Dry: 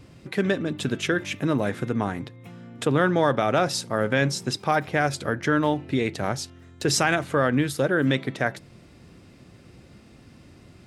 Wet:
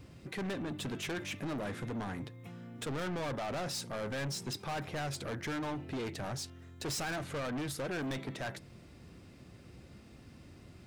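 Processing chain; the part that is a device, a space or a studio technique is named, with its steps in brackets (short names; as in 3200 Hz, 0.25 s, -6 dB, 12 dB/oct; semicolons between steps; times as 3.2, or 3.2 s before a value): open-reel tape (soft clip -29.5 dBFS, distortion -4 dB; bell 66 Hz +4 dB 0.86 oct; white noise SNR 45 dB); gain -5 dB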